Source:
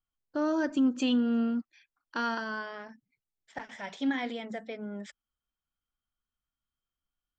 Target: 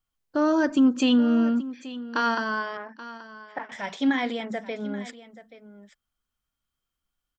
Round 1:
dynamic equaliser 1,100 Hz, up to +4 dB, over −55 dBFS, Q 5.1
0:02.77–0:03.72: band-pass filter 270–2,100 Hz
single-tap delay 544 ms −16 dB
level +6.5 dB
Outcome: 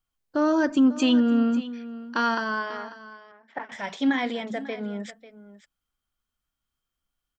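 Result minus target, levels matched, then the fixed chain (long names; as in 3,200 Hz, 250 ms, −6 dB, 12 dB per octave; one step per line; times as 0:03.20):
echo 286 ms early
dynamic equaliser 1,100 Hz, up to +4 dB, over −55 dBFS, Q 5.1
0:02.77–0:03.72: band-pass filter 270–2,100 Hz
single-tap delay 830 ms −16 dB
level +6.5 dB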